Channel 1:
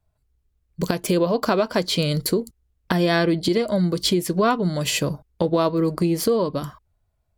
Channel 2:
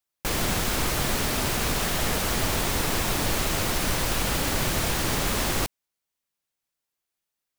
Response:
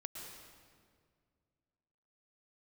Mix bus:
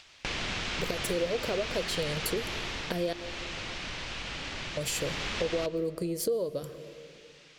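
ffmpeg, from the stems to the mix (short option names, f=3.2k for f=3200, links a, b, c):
-filter_complex "[0:a]equalizer=f=250:t=o:w=1:g=-6,equalizer=f=500:t=o:w=1:g=11,equalizer=f=1k:t=o:w=1:g=-10,equalizer=f=8k:t=o:w=1:g=5,equalizer=f=16k:t=o:w=1:g=4,volume=-5dB,asplit=3[a][b][c];[a]atrim=end=3.13,asetpts=PTS-STARTPTS,afade=t=out:st=3.126:d=0.004:c=hsin[d];[b]atrim=start=3.13:end=4.77,asetpts=PTS-STARTPTS,volume=0[e];[c]atrim=start=4.77,asetpts=PTS-STARTPTS,afade=t=in:d=0.004:c=hsin[f];[d][e][f]concat=n=3:v=0:a=1,asplit=2[g][h];[h]volume=-12.5dB[i];[1:a]lowpass=f=6.4k:w=0.5412,lowpass=f=6.4k:w=1.3066,equalizer=f=2.7k:w=0.87:g=10,acompressor=mode=upward:threshold=-27dB:ratio=2.5,volume=2.5dB,afade=t=out:st=2.34:d=0.61:silence=0.375837,afade=t=in:st=4.84:d=0.24:silence=0.398107,asplit=2[j][k];[k]volume=-9.5dB[l];[2:a]atrim=start_sample=2205[m];[i][l]amix=inputs=2:normalize=0[n];[n][m]afir=irnorm=-1:irlink=0[o];[g][j][o]amix=inputs=3:normalize=0,acompressor=threshold=-36dB:ratio=2"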